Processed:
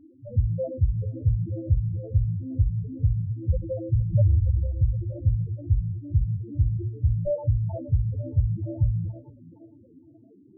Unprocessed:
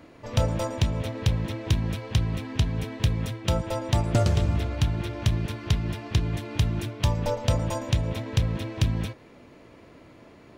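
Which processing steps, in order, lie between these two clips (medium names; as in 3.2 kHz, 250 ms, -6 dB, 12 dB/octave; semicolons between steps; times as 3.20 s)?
loudest bins only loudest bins 2; hum notches 60/120/180/240/300/360/420 Hz; repeats whose band climbs or falls 466 ms, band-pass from 250 Hz, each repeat 0.7 oct, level -10 dB; trim +6 dB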